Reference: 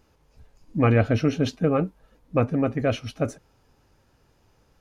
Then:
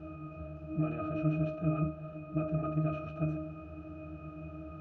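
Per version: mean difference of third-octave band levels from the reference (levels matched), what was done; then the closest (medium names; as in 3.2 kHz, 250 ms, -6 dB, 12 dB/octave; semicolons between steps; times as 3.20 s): 9.0 dB: spectral levelling over time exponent 0.4; bass shelf 430 Hz -6 dB; peak limiter -13 dBFS, peak gain reduction 6 dB; pitch-class resonator D#, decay 0.45 s; trim +7.5 dB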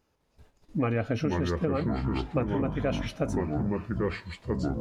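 6.0 dB: ever faster or slower copies 207 ms, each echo -5 st, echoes 3; compression, threshold -23 dBFS, peak gain reduction 9 dB; gate -51 dBFS, range -9 dB; bass shelf 95 Hz -6.5 dB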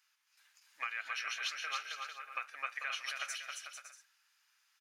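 21.0 dB: gate -55 dBFS, range -8 dB; high-pass 1.5 kHz 24 dB/octave; compression, threshold -41 dBFS, peak gain reduction 13 dB; bouncing-ball echo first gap 270 ms, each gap 0.65×, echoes 5; trim +4.5 dB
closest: second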